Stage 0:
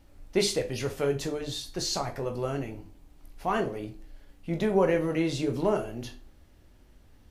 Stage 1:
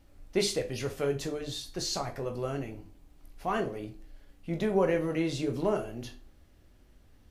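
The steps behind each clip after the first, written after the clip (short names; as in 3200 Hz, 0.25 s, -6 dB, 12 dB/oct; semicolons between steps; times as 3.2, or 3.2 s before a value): notch 900 Hz, Q 16; gain -2.5 dB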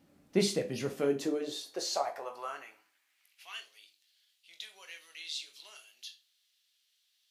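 high-pass sweep 180 Hz -> 3600 Hz, 0.82–3.69; gain -2.5 dB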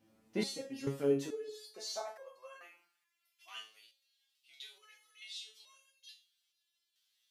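stepped resonator 2.3 Hz 110–540 Hz; gain +6 dB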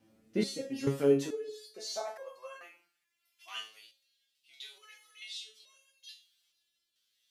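rotary speaker horn 0.75 Hz; gain +6.5 dB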